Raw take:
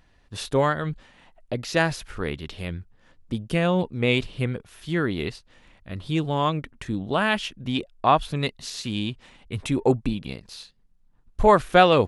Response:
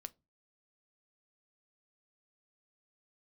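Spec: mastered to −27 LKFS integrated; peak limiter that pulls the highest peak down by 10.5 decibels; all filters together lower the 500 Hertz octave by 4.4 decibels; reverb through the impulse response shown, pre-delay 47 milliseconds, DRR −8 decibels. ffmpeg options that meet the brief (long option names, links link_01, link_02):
-filter_complex "[0:a]equalizer=frequency=500:width_type=o:gain=-5.5,alimiter=limit=-15dB:level=0:latency=1,asplit=2[link_01][link_02];[1:a]atrim=start_sample=2205,adelay=47[link_03];[link_02][link_03]afir=irnorm=-1:irlink=0,volume=13dB[link_04];[link_01][link_04]amix=inputs=2:normalize=0,volume=-6dB"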